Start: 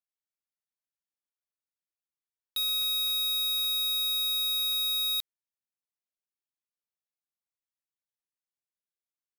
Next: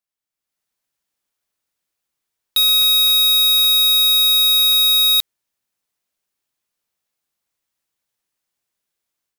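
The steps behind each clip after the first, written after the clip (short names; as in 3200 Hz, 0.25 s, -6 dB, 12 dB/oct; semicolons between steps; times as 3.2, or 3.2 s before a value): AGC gain up to 10 dB; gain +5 dB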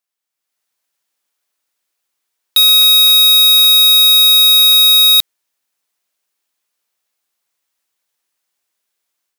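HPF 450 Hz 6 dB/oct; gain +6 dB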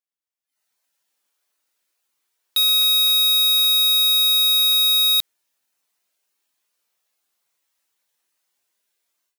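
spectral noise reduction 12 dB; limiter -15 dBFS, peak gain reduction 9.5 dB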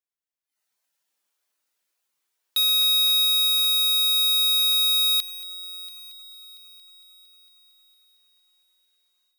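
multi-head echo 0.228 s, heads first and third, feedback 58%, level -18.5 dB; gain -3.5 dB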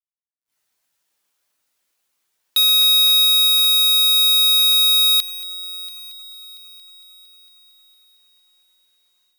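companded quantiser 8-bit; gain +6 dB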